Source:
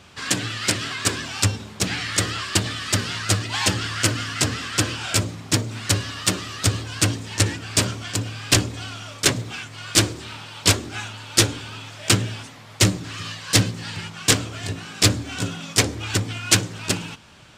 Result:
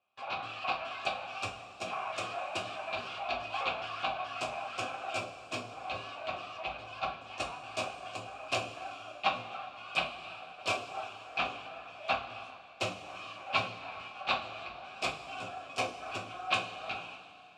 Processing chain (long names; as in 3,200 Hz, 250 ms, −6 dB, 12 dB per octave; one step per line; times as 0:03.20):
pitch shifter gated in a rhythm −11.5 semitones, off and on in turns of 212 ms
high-pass filter 42 Hz
noise gate with hold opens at −29 dBFS
formant filter a
coupled-rooms reverb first 0.28 s, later 2.9 s, from −17 dB, DRR 0 dB